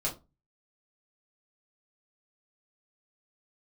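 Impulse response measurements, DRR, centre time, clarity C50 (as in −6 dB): −4.5 dB, 17 ms, 13.0 dB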